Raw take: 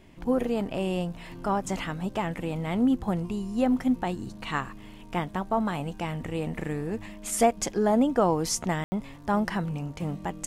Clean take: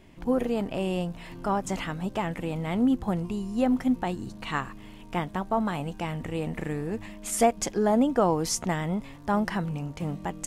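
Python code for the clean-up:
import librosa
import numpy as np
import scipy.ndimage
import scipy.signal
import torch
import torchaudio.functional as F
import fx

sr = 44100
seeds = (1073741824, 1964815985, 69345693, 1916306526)

y = fx.fix_ambience(x, sr, seeds[0], print_start_s=4.64, print_end_s=5.14, start_s=8.84, end_s=8.92)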